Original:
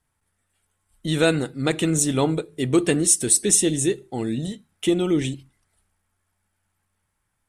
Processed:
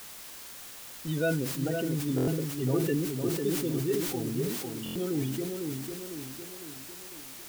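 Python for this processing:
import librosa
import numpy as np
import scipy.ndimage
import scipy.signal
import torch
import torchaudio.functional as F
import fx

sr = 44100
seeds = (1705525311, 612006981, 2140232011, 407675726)

y = fx.spec_topn(x, sr, count=16)
y = scipy.signal.sosfilt(scipy.signal.butter(4, 3300.0, 'lowpass', fs=sr, output='sos'), y)
y = y + 0.45 * np.pad(y, (int(7.5 * sr / 1000.0), 0))[:len(y)]
y = fx.echo_tape(y, sr, ms=503, feedback_pct=60, wet_db=-3, lp_hz=1100.0, drive_db=7.0, wow_cents=29)
y = fx.quant_dither(y, sr, seeds[0], bits=6, dither='triangular')
y = fx.buffer_glitch(y, sr, at_s=(2.16, 4.84), block=1024, repeats=4)
y = fx.sustainer(y, sr, db_per_s=42.0)
y = y * 10.0 ** (-9.0 / 20.0)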